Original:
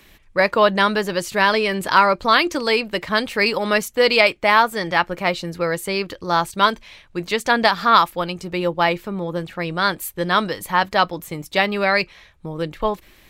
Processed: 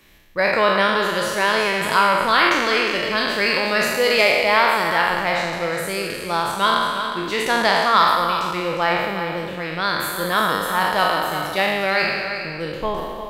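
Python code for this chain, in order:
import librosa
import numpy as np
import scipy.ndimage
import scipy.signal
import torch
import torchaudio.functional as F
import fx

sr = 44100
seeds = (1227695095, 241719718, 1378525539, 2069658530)

p1 = fx.spec_trails(x, sr, decay_s=1.62)
p2 = p1 + fx.echo_single(p1, sr, ms=358, db=-9.0, dry=0)
y = p2 * librosa.db_to_amplitude(-5.0)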